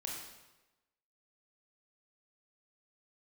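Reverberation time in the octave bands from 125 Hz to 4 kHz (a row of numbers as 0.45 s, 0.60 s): 1.1 s, 1.0 s, 1.1 s, 1.0 s, 1.0 s, 0.90 s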